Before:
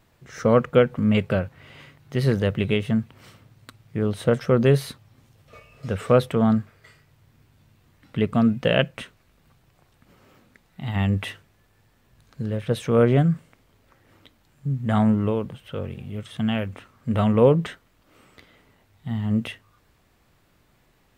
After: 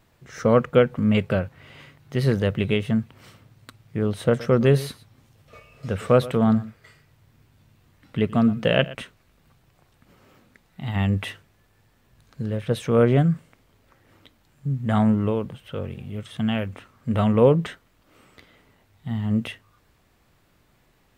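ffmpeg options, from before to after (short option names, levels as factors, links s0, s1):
-filter_complex "[0:a]asettb=1/sr,asplit=3[s0][s1][s2];[s0]atrim=end=4.284[s3];[s1]atrim=start=4.28:end=8.95,asetpts=PTS-STARTPTS,afade=t=in:d=0.004:c=qsin,afade=t=out:st=4.666:d=0.004:c=qsin,aecho=1:1:117:0.126,atrim=end_sample=205947[s4];[s2]atrim=start=8.946[s5];[s3][s4]acrossfade=d=0.004:c1=hsin:c2=qsin[s6];[s6][s5]acrossfade=d=0.004:c1=qsin:c2=hsin"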